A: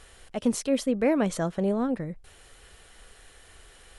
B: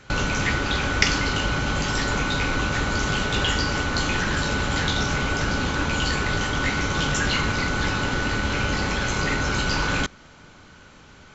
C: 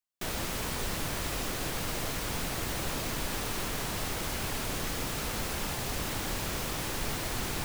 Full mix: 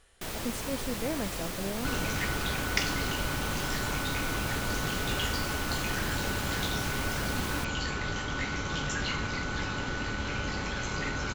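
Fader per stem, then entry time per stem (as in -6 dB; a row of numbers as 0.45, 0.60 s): -10.5, -9.0, -2.5 dB; 0.00, 1.75, 0.00 s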